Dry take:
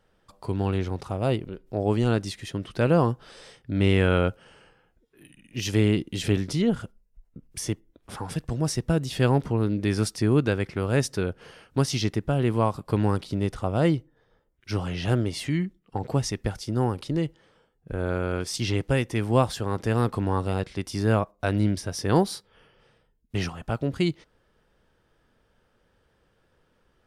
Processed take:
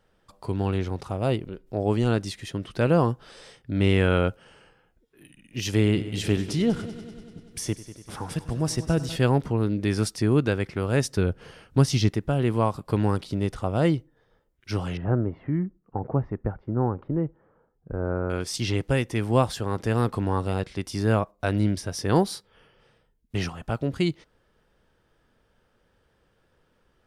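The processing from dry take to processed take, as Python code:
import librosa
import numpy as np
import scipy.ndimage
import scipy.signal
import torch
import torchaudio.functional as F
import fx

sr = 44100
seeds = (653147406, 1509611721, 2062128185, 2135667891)

y = fx.echo_heads(x, sr, ms=97, heads='first and second', feedback_pct=64, wet_db=-17.5, at=(5.76, 9.16))
y = fx.low_shelf(y, sr, hz=200.0, db=8.0, at=(11.17, 12.09))
y = fx.lowpass(y, sr, hz=1400.0, slope=24, at=(14.97, 18.3))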